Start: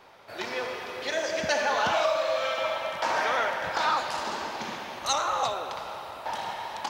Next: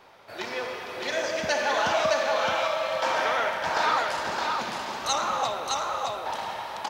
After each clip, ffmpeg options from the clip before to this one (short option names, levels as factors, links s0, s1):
-af "aecho=1:1:615:0.708"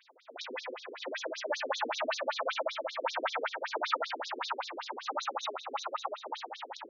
-af "afftfilt=real='re*between(b*sr/1024,310*pow(5100/310,0.5+0.5*sin(2*PI*5.2*pts/sr))/1.41,310*pow(5100/310,0.5+0.5*sin(2*PI*5.2*pts/sr))*1.41)':imag='im*between(b*sr/1024,310*pow(5100/310,0.5+0.5*sin(2*PI*5.2*pts/sr))/1.41,310*pow(5100/310,0.5+0.5*sin(2*PI*5.2*pts/sr))*1.41)':win_size=1024:overlap=0.75"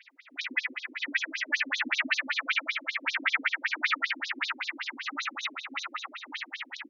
-af "firequalizer=gain_entry='entry(190,0);entry(280,8);entry(420,-24);entry(640,-22);entry(1300,-3);entry(2000,13);entry(3500,0);entry(9400,-5)':delay=0.05:min_phase=1,volume=1.5"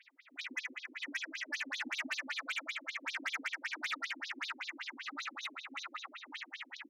-af "asoftclip=type=tanh:threshold=0.0668,volume=0.447"